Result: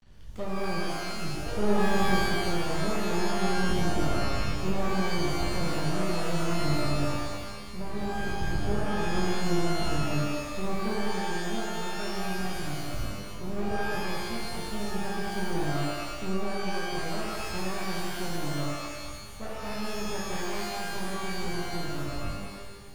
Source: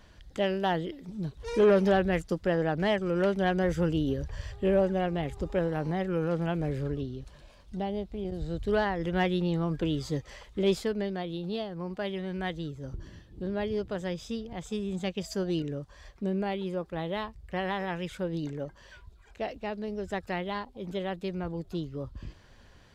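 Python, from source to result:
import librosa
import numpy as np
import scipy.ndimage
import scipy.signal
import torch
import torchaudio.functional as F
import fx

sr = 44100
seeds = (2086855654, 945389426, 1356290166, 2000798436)

y = fx.env_lowpass_down(x, sr, base_hz=450.0, full_db=-23.0)
y = fx.low_shelf(y, sr, hz=190.0, db=10.0)
y = np.maximum(y, 0.0)
y = fx.echo_thinned(y, sr, ms=207, feedback_pct=69, hz=610.0, wet_db=-3)
y = fx.rev_shimmer(y, sr, seeds[0], rt60_s=1.0, semitones=12, shimmer_db=-2, drr_db=-3.0)
y = y * librosa.db_to_amplitude(-5.5)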